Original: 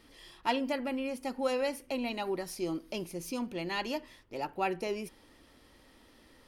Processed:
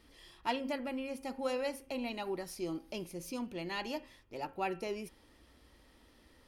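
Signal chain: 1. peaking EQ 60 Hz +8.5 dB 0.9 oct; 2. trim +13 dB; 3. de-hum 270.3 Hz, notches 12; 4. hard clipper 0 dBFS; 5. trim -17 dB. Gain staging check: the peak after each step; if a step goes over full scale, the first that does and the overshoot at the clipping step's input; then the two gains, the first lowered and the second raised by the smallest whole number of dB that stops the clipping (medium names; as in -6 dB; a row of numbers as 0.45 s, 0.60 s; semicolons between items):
-16.0 dBFS, -3.0 dBFS, -3.0 dBFS, -3.0 dBFS, -20.0 dBFS; nothing clips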